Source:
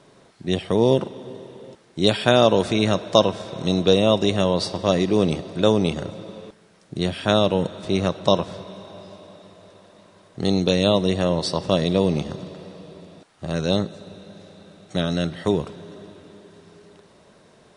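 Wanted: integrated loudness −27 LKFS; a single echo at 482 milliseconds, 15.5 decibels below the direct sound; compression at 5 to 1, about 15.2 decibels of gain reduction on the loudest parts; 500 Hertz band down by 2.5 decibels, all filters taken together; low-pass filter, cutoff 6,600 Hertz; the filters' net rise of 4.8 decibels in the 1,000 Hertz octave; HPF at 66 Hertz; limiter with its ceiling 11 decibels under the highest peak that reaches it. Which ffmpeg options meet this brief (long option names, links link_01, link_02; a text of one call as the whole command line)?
ffmpeg -i in.wav -af "highpass=66,lowpass=6600,equalizer=frequency=500:width_type=o:gain=-5.5,equalizer=frequency=1000:width_type=o:gain=8,acompressor=threshold=-28dB:ratio=5,alimiter=limit=-21dB:level=0:latency=1,aecho=1:1:482:0.168,volume=8dB" out.wav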